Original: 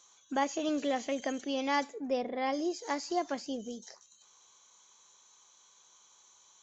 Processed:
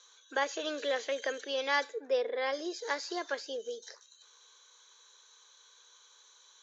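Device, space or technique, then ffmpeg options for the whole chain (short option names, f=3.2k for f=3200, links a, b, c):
phone speaker on a table: -af "highpass=f=410:w=0.5412,highpass=f=410:w=1.3066,equalizer=f=460:t=q:w=4:g=9,equalizer=f=730:t=q:w=4:g=-9,equalizer=f=1.6k:t=q:w=4:g=10,equalizer=f=3.8k:t=q:w=4:g=9,lowpass=f=6.9k:w=0.5412,lowpass=f=6.9k:w=1.3066"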